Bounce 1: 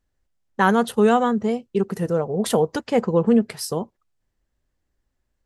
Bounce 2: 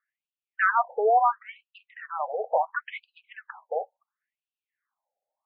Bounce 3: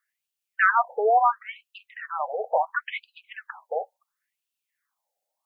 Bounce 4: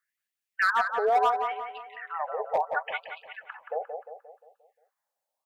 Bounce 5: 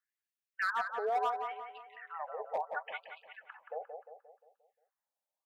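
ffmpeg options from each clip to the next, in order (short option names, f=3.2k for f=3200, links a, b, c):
-filter_complex "[0:a]acrossover=split=560 2000:gain=0.224 1 0.0708[a][b][c];[a][b][c]amix=inputs=3:normalize=0,asplit=2[d][e];[e]highpass=f=720:p=1,volume=14dB,asoftclip=type=tanh:threshold=-7.5dB[f];[d][f]amix=inputs=2:normalize=0,lowpass=f=4k:p=1,volume=-6dB,afftfilt=real='re*between(b*sr/1024,590*pow(3600/590,0.5+0.5*sin(2*PI*0.72*pts/sr))/1.41,590*pow(3600/590,0.5+0.5*sin(2*PI*0.72*pts/sr))*1.41)':imag='im*between(b*sr/1024,590*pow(3600/590,0.5+0.5*sin(2*PI*0.72*pts/sr))/1.41,590*pow(3600/590,0.5+0.5*sin(2*PI*0.72*pts/sr))*1.41)':win_size=1024:overlap=0.75"
-af "highshelf=f=2.4k:g=11"
-filter_complex "[0:a]asoftclip=type=hard:threshold=-15dB,asplit=2[a][b];[b]adelay=176,lowpass=f=2.7k:p=1,volume=-5.5dB,asplit=2[c][d];[d]adelay=176,lowpass=f=2.7k:p=1,volume=0.49,asplit=2[e][f];[f]adelay=176,lowpass=f=2.7k:p=1,volume=0.49,asplit=2[g][h];[h]adelay=176,lowpass=f=2.7k:p=1,volume=0.49,asplit=2[i][j];[j]adelay=176,lowpass=f=2.7k:p=1,volume=0.49,asplit=2[k][l];[l]adelay=176,lowpass=f=2.7k:p=1,volume=0.49[m];[c][e][g][i][k][m]amix=inputs=6:normalize=0[n];[a][n]amix=inputs=2:normalize=0,volume=-3.5dB"
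-af "highpass=f=160:w=0.5412,highpass=f=160:w=1.3066,volume=-9dB"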